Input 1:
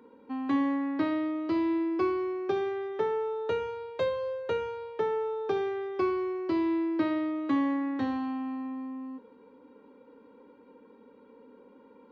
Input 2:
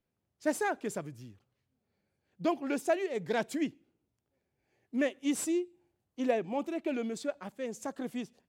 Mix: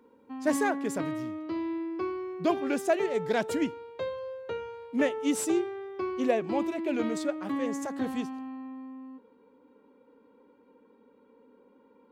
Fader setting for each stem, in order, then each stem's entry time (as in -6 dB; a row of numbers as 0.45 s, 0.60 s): -5.0 dB, +3.0 dB; 0.00 s, 0.00 s